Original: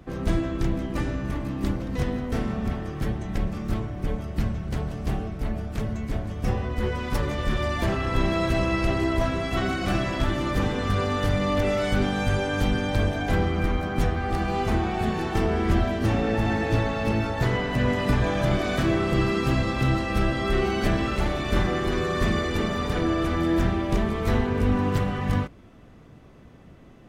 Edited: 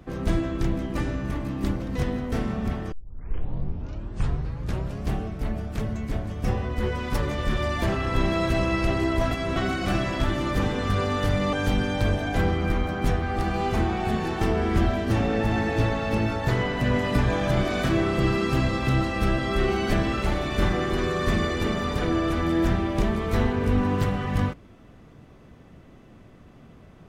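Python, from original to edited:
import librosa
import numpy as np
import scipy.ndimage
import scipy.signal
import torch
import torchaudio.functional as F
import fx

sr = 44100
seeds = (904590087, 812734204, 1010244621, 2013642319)

y = fx.edit(x, sr, fx.tape_start(start_s=2.92, length_s=2.17),
    fx.reverse_span(start_s=9.31, length_s=0.25),
    fx.cut(start_s=11.53, length_s=0.94), tone=tone)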